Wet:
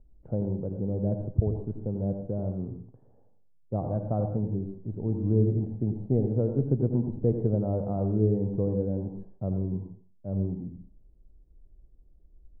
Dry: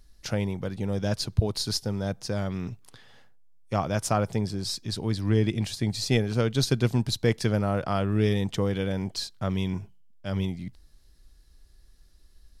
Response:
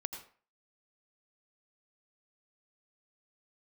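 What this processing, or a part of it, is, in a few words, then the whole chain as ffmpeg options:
next room: -filter_complex "[0:a]lowpass=f=630:w=0.5412,lowpass=f=630:w=1.3066[a];[1:a]atrim=start_sample=2205[b];[a][b]afir=irnorm=-1:irlink=0,asettb=1/sr,asplit=3[c][d][e];[c]atrim=end=3.914[f];[d]atrim=start=3.91:end=4.55,asetpts=PTS-STARTPTS,afade=t=in:d=0.004:c=qsin,afade=t=out:st=0.636:d=0.004:c=qsin,equalizer=f=400:t=o:w=0.33:g=-5,equalizer=f=1.6k:t=o:w=0.33:g=6,equalizer=f=2.5k:t=o:w=0.33:g=4[g];[e]atrim=start=4.546[h];[f][g]acrossfade=d=0.004:c1=hsin:c2=qsin[i];[i][h]acrossfade=d=0.004:c1=qsin:c2=hsin"

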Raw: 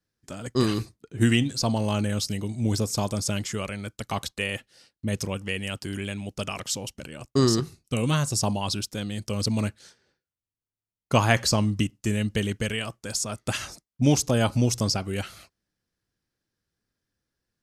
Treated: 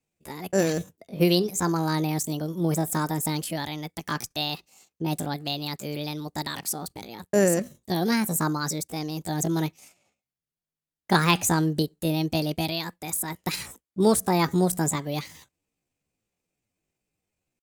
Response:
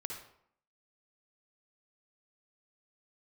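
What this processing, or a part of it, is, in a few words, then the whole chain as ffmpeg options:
chipmunk voice: -af "asetrate=66075,aresample=44100,atempo=0.66742"

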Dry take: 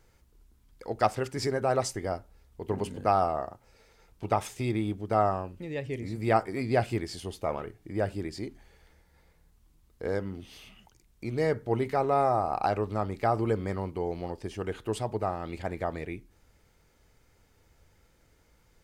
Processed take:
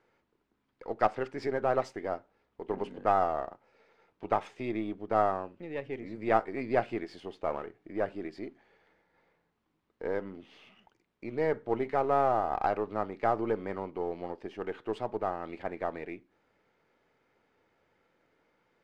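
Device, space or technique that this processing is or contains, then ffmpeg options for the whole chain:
crystal radio: -af "highpass=250,lowpass=2.5k,aeval=exprs='if(lt(val(0),0),0.708*val(0),val(0))':c=same"

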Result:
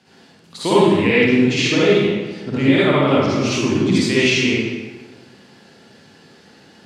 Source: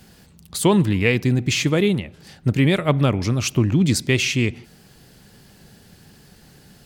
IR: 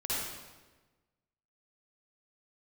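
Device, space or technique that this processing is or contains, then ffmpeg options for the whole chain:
supermarket ceiling speaker: -filter_complex "[0:a]highpass=240,lowpass=5k[a];[1:a]atrim=start_sample=2205[b];[a][b]afir=irnorm=-1:irlink=0"

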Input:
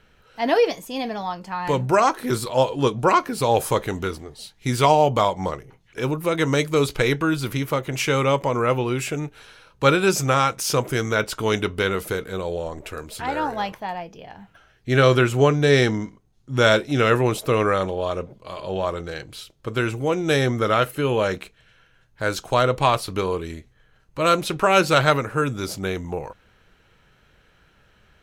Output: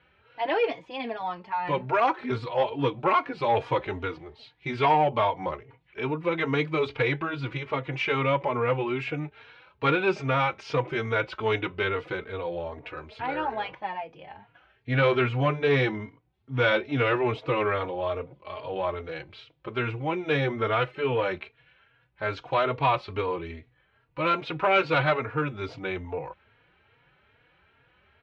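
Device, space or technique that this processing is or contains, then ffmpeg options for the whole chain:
barber-pole flanger into a guitar amplifier: -filter_complex "[0:a]asplit=2[a][b];[b]adelay=3.6,afreqshift=2.4[c];[a][c]amix=inputs=2:normalize=1,asoftclip=type=tanh:threshold=-13.5dB,highpass=77,equalizer=f=200:t=q:w=4:g=-9,equalizer=f=900:t=q:w=4:g=4,equalizer=f=2.3k:t=q:w=4:g=5,lowpass=f=3.5k:w=0.5412,lowpass=f=3.5k:w=1.3066,volume=-1.5dB"

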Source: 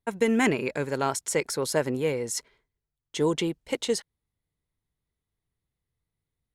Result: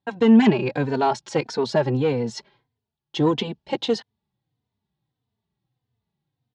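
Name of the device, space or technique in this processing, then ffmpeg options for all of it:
barber-pole flanger into a guitar amplifier: -filter_complex "[0:a]asplit=2[a][b];[b]adelay=3.2,afreqshift=-1.6[c];[a][c]amix=inputs=2:normalize=1,asoftclip=type=tanh:threshold=-19dB,highpass=110,equalizer=f=120:t=q:w=4:g=8,equalizer=f=210:t=q:w=4:g=7,equalizer=f=510:t=q:w=4:g=-4,equalizer=f=820:t=q:w=4:g=7,equalizer=f=1.3k:t=q:w=4:g=-5,equalizer=f=2.1k:t=q:w=4:g=-8,lowpass=f=4.6k:w=0.5412,lowpass=f=4.6k:w=1.3066,volume=9dB"

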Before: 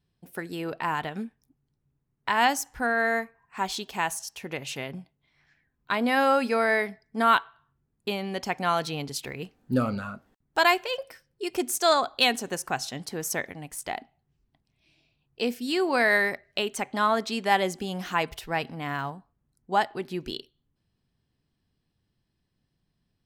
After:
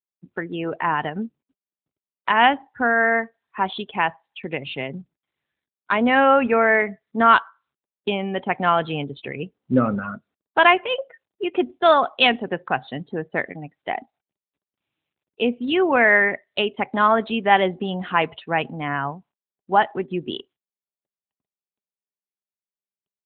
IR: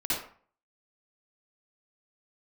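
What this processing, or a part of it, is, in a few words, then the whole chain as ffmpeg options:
mobile call with aggressive noise cancelling: -filter_complex "[0:a]asettb=1/sr,asplit=3[a][b][c];[a]atrim=end=3.714[d];[b]atrim=start=3.71:end=4.5,asetpts=PTS-STARTPTS,afade=t=in:d=0.004:c=qsin,afade=t=out:st=0.786:d=0.004:c=qsin,adynamicequalizer=threshold=0.00447:dfrequency=8500:dqfactor=1.7:tfrequency=8500:tqfactor=1.7:attack=5:release=100:ratio=0.375:range=2:mode=boostabove:tftype=bell[e];[c]atrim=start=4.496[f];[d][e]acrossfade=d=0.004:c1=hsin:c2=qsin[g];[g][f]acrossfade=d=0.004:c1=qsin:c2=hsin,highpass=120,afftdn=nr=33:nf=-41,volume=7dB" -ar 8000 -c:a libopencore_amrnb -b:a 12200

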